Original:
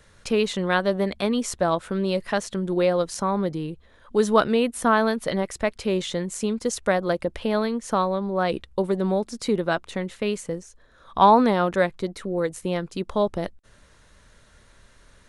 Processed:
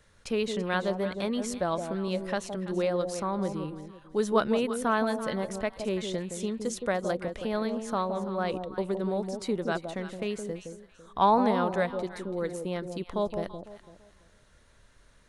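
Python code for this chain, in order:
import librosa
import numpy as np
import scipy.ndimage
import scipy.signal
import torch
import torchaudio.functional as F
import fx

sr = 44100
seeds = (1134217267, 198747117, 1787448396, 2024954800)

y = fx.echo_alternate(x, sr, ms=167, hz=860.0, feedback_pct=50, wet_db=-6)
y = F.gain(torch.from_numpy(y), -7.0).numpy()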